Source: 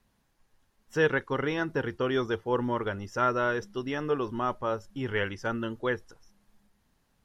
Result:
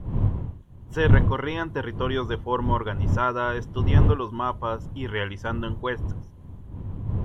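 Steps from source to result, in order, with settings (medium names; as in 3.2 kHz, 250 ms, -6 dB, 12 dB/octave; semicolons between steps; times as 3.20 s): wind noise 120 Hz -27 dBFS; graphic EQ with 31 bands 100 Hz +7 dB, 1 kHz +9 dB, 3.15 kHz +6 dB, 5 kHz -9 dB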